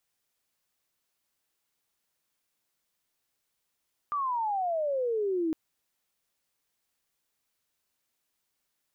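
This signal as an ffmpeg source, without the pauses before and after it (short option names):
-f lavfi -i "aevalsrc='pow(10,(-27+1.5*t/1.41)/20)*sin(2*PI*1200*1.41/log(310/1200)*(exp(log(310/1200)*t/1.41)-1))':d=1.41:s=44100"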